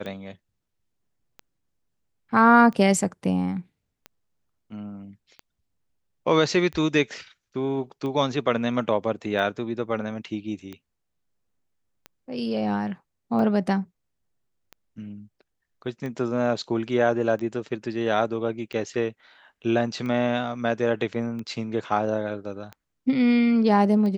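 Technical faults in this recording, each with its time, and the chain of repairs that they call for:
tick 45 rpm -23 dBFS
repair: de-click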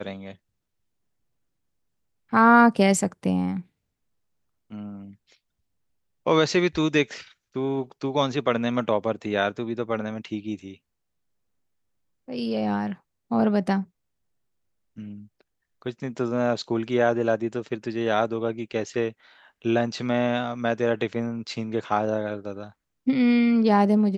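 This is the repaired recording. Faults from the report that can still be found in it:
none

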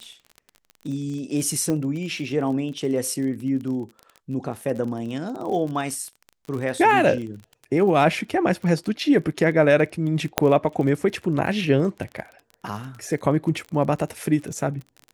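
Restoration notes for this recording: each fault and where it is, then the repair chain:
crackle 33/s -31 dBFS
1.7 pop -14 dBFS
10.38 pop -1 dBFS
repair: de-click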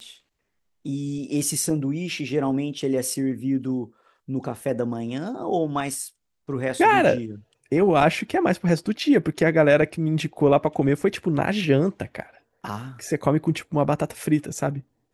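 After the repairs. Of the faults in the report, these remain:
none

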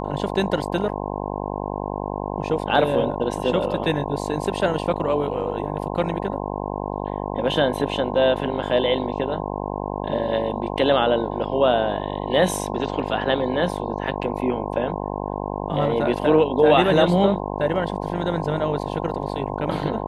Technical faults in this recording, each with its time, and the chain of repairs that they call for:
buzz 50 Hz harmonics 21 -28 dBFS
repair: de-hum 50 Hz, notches 21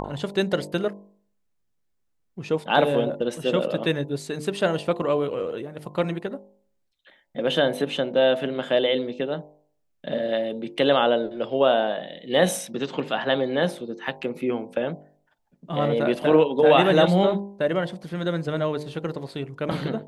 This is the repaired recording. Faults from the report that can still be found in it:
none

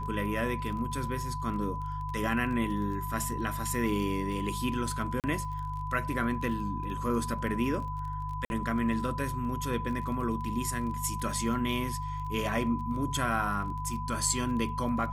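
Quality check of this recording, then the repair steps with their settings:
crackle 26/s -38 dBFS
hum 50 Hz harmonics 3 -37 dBFS
tone 1000 Hz -36 dBFS
5.2–5.24 gap 38 ms
8.45–8.5 gap 51 ms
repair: de-click; de-hum 50 Hz, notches 3; notch 1000 Hz, Q 30; interpolate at 5.2, 38 ms; interpolate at 8.45, 51 ms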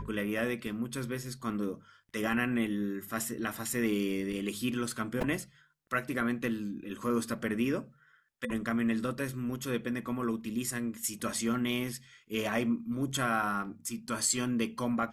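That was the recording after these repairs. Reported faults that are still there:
none

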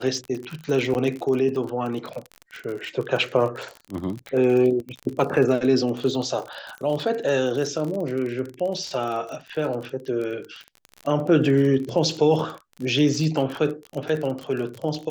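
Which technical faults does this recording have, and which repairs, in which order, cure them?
crackle 37/s -28 dBFS
0.94–0.95 gap 9.7 ms
13.55 gap 2.9 ms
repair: de-click; interpolate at 0.94, 9.7 ms; interpolate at 13.55, 2.9 ms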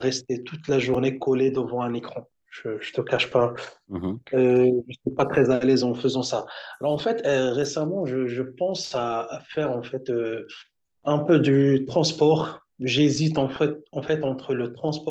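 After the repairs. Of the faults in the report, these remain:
none

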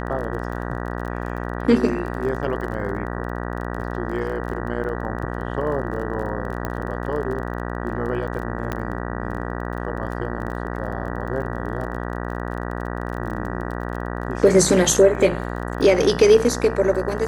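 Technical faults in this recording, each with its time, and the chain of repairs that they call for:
buzz 60 Hz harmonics 32 -28 dBFS
crackle 25/s -31 dBFS
6.65 pop -13 dBFS
8.72 pop -12 dBFS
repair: de-click; de-hum 60 Hz, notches 32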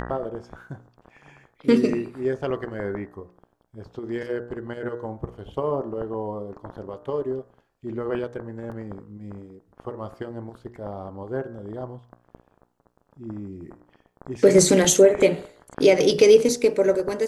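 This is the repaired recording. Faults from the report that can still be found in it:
8.72 pop

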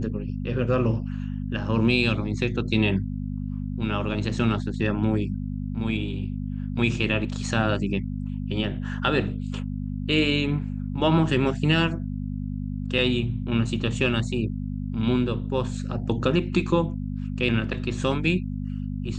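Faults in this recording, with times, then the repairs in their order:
hum 50 Hz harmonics 5 -30 dBFS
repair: de-hum 50 Hz, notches 5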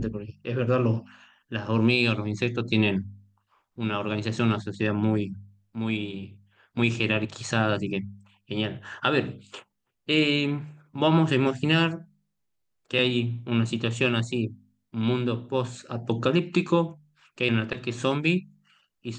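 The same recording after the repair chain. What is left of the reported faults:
none

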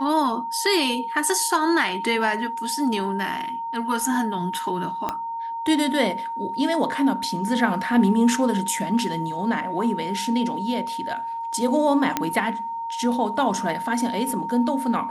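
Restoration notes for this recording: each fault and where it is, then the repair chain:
tone 920 Hz -27 dBFS
5.09 pop -11 dBFS
12.17 pop -6 dBFS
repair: de-click; notch 920 Hz, Q 30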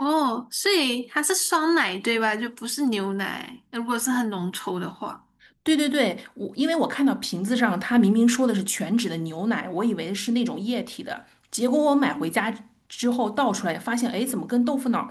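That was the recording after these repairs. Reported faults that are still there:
5.09 pop

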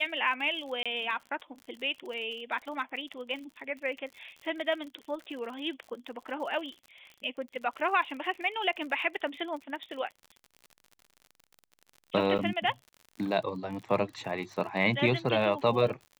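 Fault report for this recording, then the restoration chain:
crackle 59/s -40 dBFS
0.83–0.86 gap 26 ms
12.38–12.39 gap 8.6 ms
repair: de-click; interpolate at 0.83, 26 ms; interpolate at 12.38, 8.6 ms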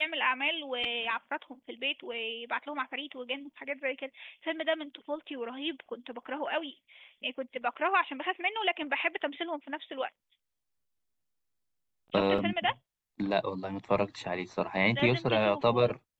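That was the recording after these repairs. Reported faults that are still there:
none

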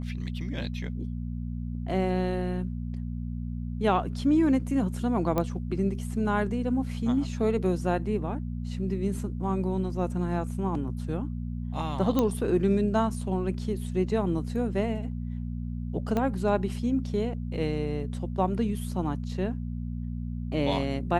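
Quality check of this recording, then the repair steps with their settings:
hum 60 Hz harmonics 4 -33 dBFS
5.38 pop -14 dBFS
12.19 pop -12 dBFS
16.17 pop -16 dBFS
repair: de-click; de-hum 60 Hz, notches 4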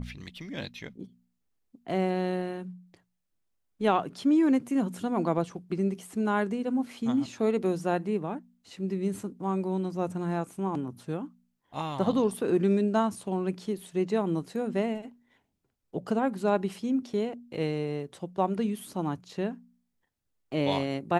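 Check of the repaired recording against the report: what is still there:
16.17 pop

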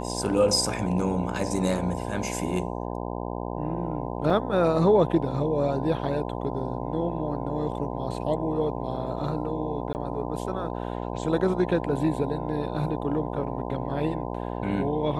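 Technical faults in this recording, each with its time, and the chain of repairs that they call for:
buzz 60 Hz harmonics 17 -32 dBFS
4.3 gap 3.4 ms
9.93–9.95 gap 19 ms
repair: de-hum 60 Hz, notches 17; interpolate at 4.3, 3.4 ms; interpolate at 9.93, 19 ms

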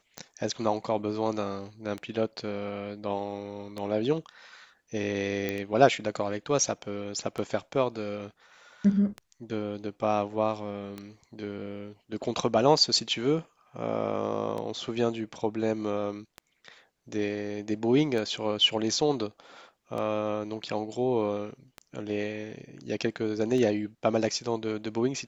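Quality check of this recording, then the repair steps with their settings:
tick 33 1/3 rpm -22 dBFS
5.49 pop -16 dBFS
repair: de-click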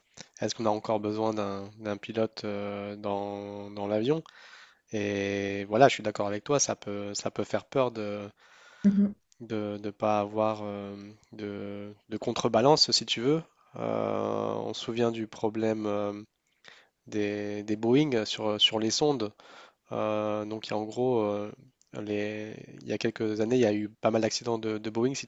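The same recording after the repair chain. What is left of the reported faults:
none

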